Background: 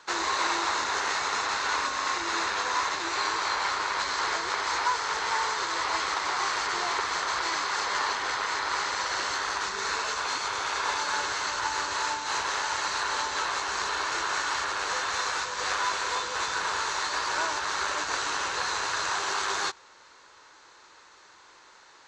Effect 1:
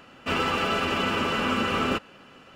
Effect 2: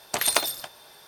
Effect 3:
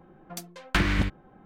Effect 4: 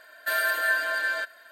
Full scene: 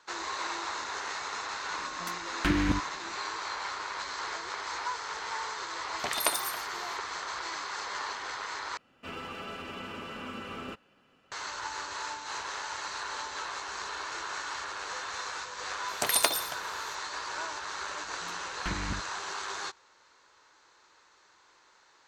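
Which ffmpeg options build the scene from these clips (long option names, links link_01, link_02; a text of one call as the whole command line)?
ffmpeg -i bed.wav -i cue0.wav -i cue1.wav -i cue2.wav -filter_complex "[3:a]asplit=2[link_01][link_02];[2:a]asplit=2[link_03][link_04];[0:a]volume=-8dB[link_05];[link_01]equalizer=frequency=300:width_type=o:width=0.41:gain=11.5[link_06];[link_03]acrossover=split=5900[link_07][link_08];[link_08]adelay=90[link_09];[link_07][link_09]amix=inputs=2:normalize=0[link_10];[link_04]highpass=44[link_11];[link_02]lowpass=frequency=3700:poles=1[link_12];[link_05]asplit=2[link_13][link_14];[link_13]atrim=end=8.774[link_15];[1:a]atrim=end=2.55,asetpts=PTS-STARTPTS,volume=-15dB[link_16];[link_14]atrim=start=11.316[link_17];[link_06]atrim=end=1.45,asetpts=PTS-STARTPTS,volume=-6dB,afade=type=in:duration=0.004:curve=hsin,afade=type=out:start_time=1.446:duration=0.004:curve=hsin,adelay=1700[link_18];[link_10]atrim=end=1.07,asetpts=PTS-STARTPTS,volume=-5.5dB,afade=type=in:duration=0.004:curve=hsin,afade=type=out:start_time=1.066:duration=0.004:curve=hsin,adelay=5900[link_19];[link_11]atrim=end=1.07,asetpts=PTS-STARTPTS,volume=-2.5dB,afade=type=in:duration=0.004:curve=hsin,afade=type=out:start_time=1.066:duration=0.004:curve=hsin,adelay=700308S[link_20];[link_12]atrim=end=1.45,asetpts=PTS-STARTPTS,volume=-11dB,afade=type=in:duration=0.004:curve=hsin,afade=type=out:start_time=1.446:duration=0.004:curve=hsin,adelay=17910[link_21];[link_15][link_16]acrossfade=duration=0.004:curve1=hsin:curve2=hsin[link_22];[link_22][link_17]acrossfade=duration=0.004:curve1=hsin:curve2=hsin[link_23];[link_23][link_18][link_19][link_20][link_21]amix=inputs=5:normalize=0" out.wav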